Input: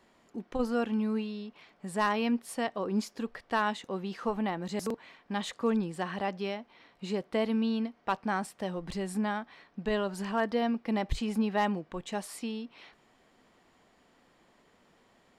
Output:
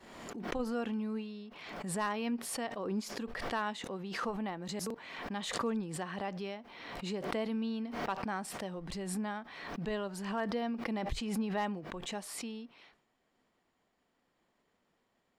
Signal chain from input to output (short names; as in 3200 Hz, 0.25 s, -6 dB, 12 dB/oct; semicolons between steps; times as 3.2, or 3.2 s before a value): expander -58 dBFS; backwards sustainer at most 42 dB/s; gain -6.5 dB